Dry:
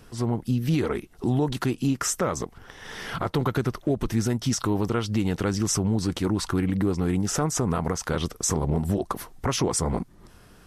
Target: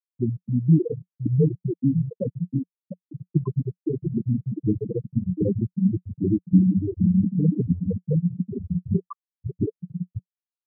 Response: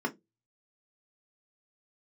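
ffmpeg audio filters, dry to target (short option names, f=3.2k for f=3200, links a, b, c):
-af "flanger=delay=5.8:depth=4.3:regen=1:speed=1.2:shape=sinusoidal,aecho=1:1:700|1260|1708|2066|2353:0.631|0.398|0.251|0.158|0.1,afftfilt=real='re*gte(hypot(re,im),0.355)':imag='im*gte(hypot(re,im),0.355)':win_size=1024:overlap=0.75,highpass=100,equalizer=f=180:t=q:w=4:g=7,equalizer=f=460:t=q:w=4:g=5,equalizer=f=840:t=q:w=4:g=-5,equalizer=f=1.7k:t=q:w=4:g=-5,equalizer=f=3k:t=q:w=4:g=7,lowpass=f=3.6k:w=0.5412,lowpass=f=3.6k:w=1.3066,volume=5dB" -ar 48000 -c:a aac -b:a 160k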